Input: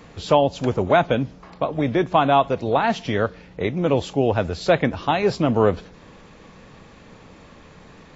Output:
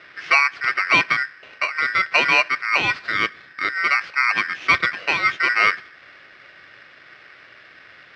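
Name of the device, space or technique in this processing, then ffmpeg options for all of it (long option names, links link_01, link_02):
ring modulator pedal into a guitar cabinet: -af "aeval=exprs='val(0)*sgn(sin(2*PI*1700*n/s))':channel_layout=same,highpass=97,equalizer=frequency=220:width_type=q:width=4:gain=-4,equalizer=frequency=360:width_type=q:width=4:gain=4,equalizer=frequency=880:width_type=q:width=4:gain=-8,equalizer=frequency=2300:width_type=q:width=4:gain=3,lowpass=frequency=4000:width=0.5412,lowpass=frequency=4000:width=1.3066"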